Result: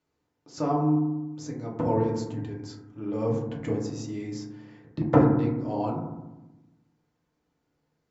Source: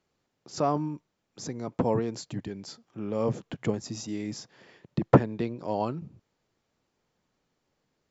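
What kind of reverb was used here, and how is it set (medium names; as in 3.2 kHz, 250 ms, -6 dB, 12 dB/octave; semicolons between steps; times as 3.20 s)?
FDN reverb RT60 1 s, low-frequency decay 1.5×, high-frequency decay 0.25×, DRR -3.5 dB; trim -6.5 dB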